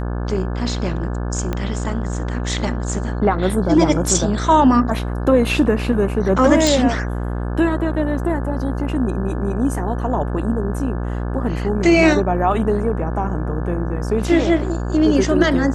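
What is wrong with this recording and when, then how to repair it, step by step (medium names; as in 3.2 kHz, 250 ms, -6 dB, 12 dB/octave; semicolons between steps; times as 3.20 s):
buzz 60 Hz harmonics 29 -23 dBFS
1.53 s: pop -10 dBFS
6.67 s: pop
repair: de-click; de-hum 60 Hz, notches 29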